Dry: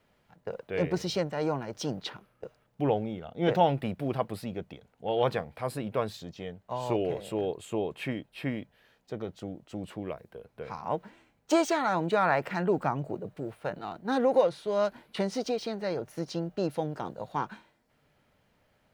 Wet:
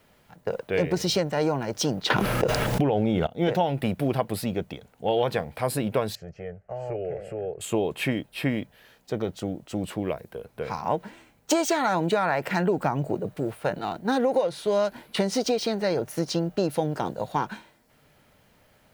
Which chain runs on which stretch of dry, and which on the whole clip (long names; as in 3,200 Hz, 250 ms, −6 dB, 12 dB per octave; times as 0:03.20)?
0:02.10–0:03.27: high-shelf EQ 9,900 Hz −9 dB + envelope flattener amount 100%
0:06.15–0:07.61: downward compressor 2 to 1, threshold −35 dBFS + head-to-tape spacing loss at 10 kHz 24 dB + phaser with its sweep stopped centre 990 Hz, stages 6
whole clip: high-shelf EQ 7,200 Hz +9 dB; downward compressor 10 to 1, threshold −27 dBFS; dynamic equaliser 1,200 Hz, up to −5 dB, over −55 dBFS, Q 6.3; level +8 dB